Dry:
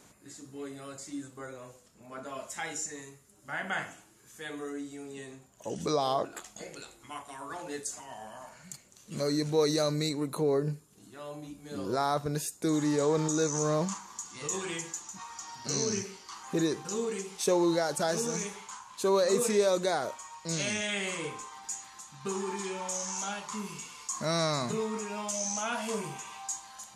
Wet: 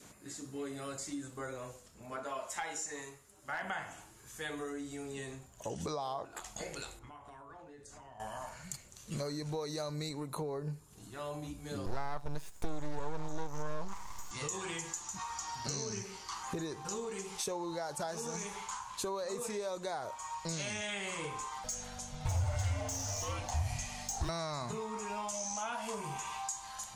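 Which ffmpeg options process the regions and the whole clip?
ffmpeg -i in.wav -filter_complex "[0:a]asettb=1/sr,asplit=3[link_01][link_02][link_03];[link_01]atrim=end=2.164[link_04];[link_02]atrim=start=2.16:end=3.62,asetpts=PTS-STARTPTS,afade=type=in:duration=0.004:curve=qsin,afade=type=out:start_time=1.456:duration=0.004:curve=qsin,bass=frequency=250:gain=-9,treble=frequency=4000:gain=-3,asoftclip=type=hard:threshold=-28.5dB[link_05];[link_03]atrim=start=3.616[link_06];[link_04][link_05]acrossfade=duration=0.004:curve1=hsin:curve2=qsin[link_07];[link_07][link_06]acrossfade=duration=0.004:curve1=qsin:curve2=hsin,asettb=1/sr,asplit=3[link_08][link_09][link_10];[link_08]atrim=end=6.994[link_11];[link_09]atrim=start=6.99:end=8.2,asetpts=PTS-STARTPTS,afade=type=in:duration=0.004:curve=qsin,afade=type=out:start_time=1.206:duration=0.004:curve=qsin,lowpass=frequency=1100:poles=1,acompressor=threshold=-51dB:ratio=10:attack=3.2:release=140:knee=1:detection=peak,asplit=2[link_12][link_13];[link_13]adelay=27,volume=-13dB[link_14];[link_12][link_14]amix=inputs=2:normalize=0,atrim=end_sample=53361[link_15];[link_10]atrim=start=8.196[link_16];[link_11][link_15]acrossfade=duration=0.004:curve1=hsin:curve2=qsin[link_17];[link_17][link_16]acrossfade=duration=0.004:curve1=qsin:curve2=hsin,asettb=1/sr,asplit=3[link_18][link_19][link_20];[link_18]atrim=end=11.864[link_21];[link_19]atrim=start=11.86:end=14.31,asetpts=PTS-STARTPTS,afade=type=in:duration=0.004:curve=qsin,afade=type=out:start_time=2.446:duration=0.004:curve=qsin,acrossover=split=3600[link_22][link_23];[link_23]acompressor=threshold=-47dB:ratio=4:attack=1:release=60[link_24];[link_22][link_24]amix=inputs=2:normalize=0,aeval=exprs='max(val(0),0)':channel_layout=same[link_25];[link_20]atrim=start=14.306[link_26];[link_21][link_25]acrossfade=duration=0.004:curve1=hsin:curve2=qsin[link_27];[link_27][link_26]acrossfade=duration=0.004:curve1=qsin:curve2=hsin,asettb=1/sr,asplit=3[link_28][link_29][link_30];[link_28]atrim=end=21.644[link_31];[link_29]atrim=start=21.64:end=24.29,asetpts=PTS-STARTPTS,afade=type=in:duration=0.004:curve=qsin,afade=type=out:start_time=2.646:duration=0.004:curve=qsin,aeval=exprs='val(0)+0.00224*(sin(2*PI*50*n/s)+sin(2*PI*2*50*n/s)/2+sin(2*PI*3*50*n/s)/3+sin(2*PI*4*50*n/s)/4+sin(2*PI*5*50*n/s)/5)':channel_layout=same,volume=31.5dB,asoftclip=hard,volume=-31.5dB,afreqshift=-290[link_32];[link_30]atrim=start=24.286[link_33];[link_31][link_32]acrossfade=duration=0.004:curve1=hsin:curve2=qsin[link_34];[link_34][link_33]acrossfade=duration=0.004:curve1=qsin:curve2=hsin,adynamicequalizer=threshold=0.00501:dfrequency=890:dqfactor=2:tfrequency=890:tqfactor=2:attack=5:release=100:ratio=0.375:range=3.5:mode=boostabove:tftype=bell,acompressor=threshold=-38dB:ratio=6,asubboost=boost=4.5:cutoff=98,volume=2.5dB" out.wav

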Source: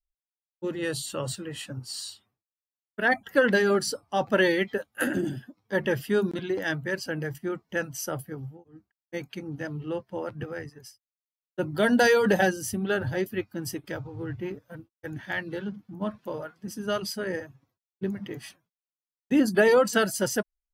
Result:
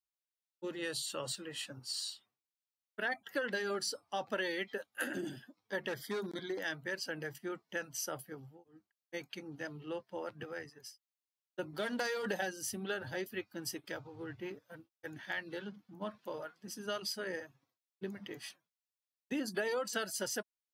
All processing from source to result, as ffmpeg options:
ffmpeg -i in.wav -filter_complex "[0:a]asettb=1/sr,asplit=3[link_01][link_02][link_03];[link_01]atrim=end=5.884[link_04];[link_02]atrim=start=5.88:end=6.58,asetpts=PTS-STARTPTS,afade=type=in:duration=0.004:curve=qsin,afade=type=out:start_time=0.696:duration=0.004:curve=qsin,asuperstop=centerf=2700:order=8:qfactor=3.3,volume=21dB,asoftclip=hard,volume=-21dB[link_05];[link_03]atrim=start=6.576[link_06];[link_04][link_05]acrossfade=duration=0.004:curve1=hsin:curve2=qsin[link_07];[link_07][link_06]acrossfade=duration=0.004:curve1=qsin:curve2=hsin,asettb=1/sr,asplit=3[link_08][link_09][link_10];[link_08]atrim=end=11.734[link_11];[link_09]atrim=start=11.73:end=12.25,asetpts=PTS-STARTPTS,afade=type=in:duration=0.004:curve=qsin,afade=type=out:start_time=0.516:duration=0.004:curve=qsin,aeval=exprs='if(lt(val(0),0),0.447*val(0),val(0))':channel_layout=same,lowshelf=frequency=110:width_type=q:width=1.5:gain=-6.5[link_12];[link_10]atrim=start=12.246[link_13];[link_11][link_12]acrossfade=duration=0.004:curve1=hsin:curve2=qsin[link_14];[link_14][link_13]acrossfade=duration=0.004:curve1=qsin:curve2=hsin,highpass=frequency=410:poles=1,equalizer=frequency=4200:width=0.99:gain=4.5,acompressor=threshold=-29dB:ratio=3,volume=-5.5dB" out.wav

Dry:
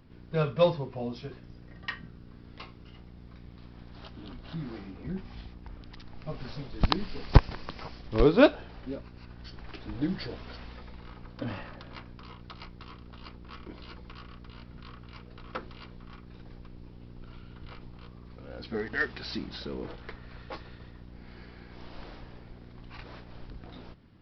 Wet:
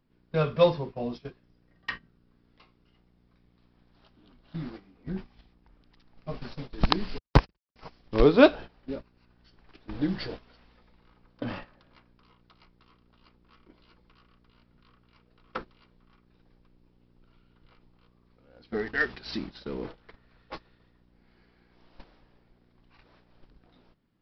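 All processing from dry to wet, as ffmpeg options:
ffmpeg -i in.wav -filter_complex "[0:a]asettb=1/sr,asplit=3[link_01][link_02][link_03];[link_01]atrim=end=7.184[link_04];[link_02]atrim=start=7.18:end=7.76,asetpts=PTS-STARTPTS,afade=type=in:duration=0.004:curve=qsin,afade=type=out:start_time=0.576:duration=0.004:curve=qsin,agate=range=-59dB:threshold=-32dB:ratio=16:release=100:detection=peak,highpass=44[link_05];[link_03]atrim=start=7.756[link_06];[link_04][link_05]acrossfade=duration=0.004:curve1=hsin:curve2=qsin[link_07];[link_07][link_06]acrossfade=duration=0.004:curve1=qsin:curve2=hsin,agate=range=-16dB:threshold=-38dB:ratio=16:detection=peak,equalizer=frequency=83:width_type=o:width=0.83:gain=-9.5,volume=2.5dB" out.wav

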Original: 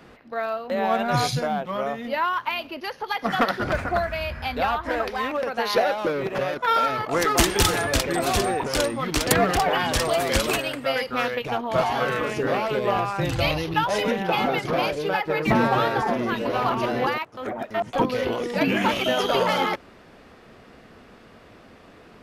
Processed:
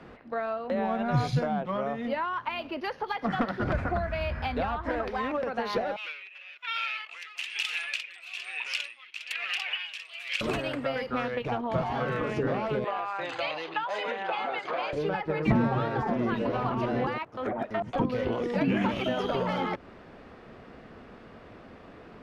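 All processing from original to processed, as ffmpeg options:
ffmpeg -i in.wav -filter_complex "[0:a]asettb=1/sr,asplit=3[link_01][link_02][link_03];[link_01]atrim=end=5.964[link_04];[link_02]atrim=start=5.96:end=10.41,asetpts=PTS-STARTPTS,afade=type=in:duration=0.004:curve=qsin,afade=type=out:start_time=4.446:duration=0.004:curve=qsin,highpass=frequency=2600:width_type=q:width=6.6,aeval=exprs='val(0)*pow(10,-18*(0.5-0.5*cos(2*PI*1.1*n/s))/20)':channel_layout=same[link_05];[link_03]atrim=start=10.406[link_06];[link_04][link_05]acrossfade=duration=0.004:curve1=hsin:curve2=qsin[link_07];[link_07][link_06]acrossfade=duration=0.004:curve1=qsin:curve2=hsin,asettb=1/sr,asplit=3[link_08][link_09][link_10];[link_08]atrim=end=12.844[link_11];[link_09]atrim=start=12.84:end=14.93,asetpts=PTS-STARTPTS,afade=type=in:duration=0.004:curve=qsin,afade=type=out:start_time=2.086:duration=0.004:curve=qsin,highpass=700,lowpass=7100,bandreject=frequency=5500:width=5.1[link_12];[link_10]atrim=start=14.926[link_13];[link_11][link_12]acrossfade=duration=0.004:curve1=hsin:curve2=qsin[link_14];[link_14][link_13]acrossfade=duration=0.004:curve1=qsin:curve2=hsin,aemphasis=mode=reproduction:type=75fm,acrossover=split=250[link_15][link_16];[link_16]acompressor=threshold=-28dB:ratio=6[link_17];[link_15][link_17]amix=inputs=2:normalize=0" out.wav

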